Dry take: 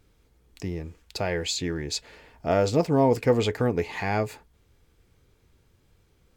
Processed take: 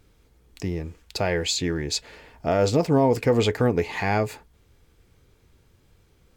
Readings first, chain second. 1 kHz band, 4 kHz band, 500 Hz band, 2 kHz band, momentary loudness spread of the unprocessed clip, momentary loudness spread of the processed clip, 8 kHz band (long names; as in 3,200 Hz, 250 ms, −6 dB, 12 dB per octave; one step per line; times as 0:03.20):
+2.0 dB, +3.5 dB, +2.0 dB, +3.0 dB, 14 LU, 12 LU, +3.5 dB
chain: brickwall limiter −14.5 dBFS, peak gain reduction 4.5 dB
level +3.5 dB